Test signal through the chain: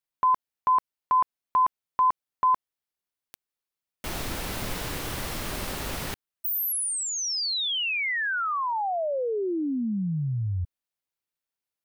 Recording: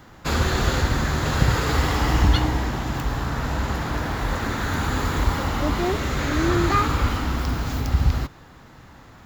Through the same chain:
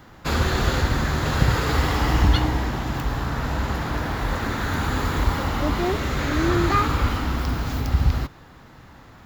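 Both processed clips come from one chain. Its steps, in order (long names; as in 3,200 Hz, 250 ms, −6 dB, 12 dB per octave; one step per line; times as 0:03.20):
parametric band 7,100 Hz −3 dB 0.65 octaves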